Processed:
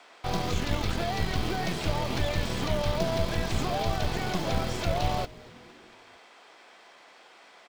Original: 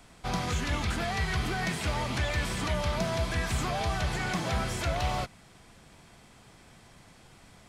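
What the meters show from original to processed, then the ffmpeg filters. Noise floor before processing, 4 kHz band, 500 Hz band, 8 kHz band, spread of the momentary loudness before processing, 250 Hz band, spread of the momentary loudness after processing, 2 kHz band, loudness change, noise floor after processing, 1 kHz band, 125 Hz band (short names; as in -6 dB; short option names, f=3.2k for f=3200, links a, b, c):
-56 dBFS, +1.5 dB, +3.5 dB, -2.0 dB, 1 LU, +2.0 dB, 3 LU, -3.0 dB, +1.0 dB, -54 dBFS, +1.0 dB, +0.5 dB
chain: -filter_complex "[0:a]lowpass=4.5k,acrossover=split=370|830|3100[a][b][c][d];[a]acrusher=bits=4:dc=4:mix=0:aa=0.000001[e];[c]acompressor=threshold=-50dB:ratio=6[f];[d]acrusher=bits=4:mode=log:mix=0:aa=0.000001[g];[e][b][f][g]amix=inputs=4:normalize=0,asplit=5[h][i][j][k][l];[i]adelay=231,afreqshift=-120,volume=-22dB[m];[j]adelay=462,afreqshift=-240,volume=-26.6dB[n];[k]adelay=693,afreqshift=-360,volume=-31.2dB[o];[l]adelay=924,afreqshift=-480,volume=-35.7dB[p];[h][m][n][o][p]amix=inputs=5:normalize=0,volume=5.5dB"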